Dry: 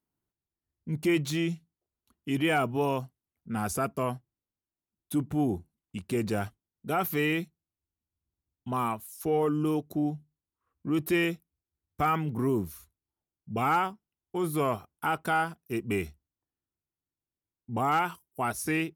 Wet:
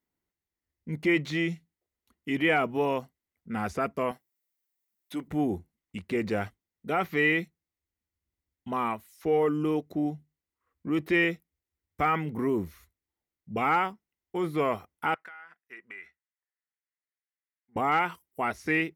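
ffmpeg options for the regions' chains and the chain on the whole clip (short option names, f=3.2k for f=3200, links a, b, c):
-filter_complex "[0:a]asettb=1/sr,asplit=3[a][b][c];[a]atrim=end=4.114[d];[b]atrim=start=4.11:end=5.28,asetpts=PTS-STARTPTS,afade=t=in:d=0.004:c=qsin,afade=t=out:st=1.166:d=0.004:c=qsin,highpass=f=500:p=1,aemphasis=mode=production:type=50kf[e];[c]atrim=start=5.276[f];[d][e]acrossfade=d=0.004:c1=hsin:c2=qsin[g];[g][f]acrossfade=d=0.004:c1=qsin:c2=hsin,asettb=1/sr,asplit=3[h][i][j];[h]atrim=end=15.144[k];[i]atrim=start=15.14:end=17.76,asetpts=PTS-STARTPTS,afade=t=in:d=0.004:c=qsin,afade=t=out:st=2.616:d=0.004:c=qsin,bandpass=f=1.7k:t=q:w=2.5,acompressor=threshold=-44dB:ratio=16:attack=3.2:release=140:knee=1:detection=peak[l];[j]atrim=start=17.756[m];[k][l]acrossfade=d=0.004:c1=hsin:c2=qsin[n];[n][m]acrossfade=d=0.004:c1=qsin:c2=hsin,acrossover=split=4900[o][p];[p]acompressor=threshold=-56dB:ratio=4:attack=1:release=60[q];[o][q]amix=inputs=2:normalize=0,equalizer=f=125:t=o:w=0.33:g=-10,equalizer=f=500:t=o:w=0.33:g=4,equalizer=f=2k:t=o:w=0.33:g=10,equalizer=f=10k:t=o:w=0.33:g=-3"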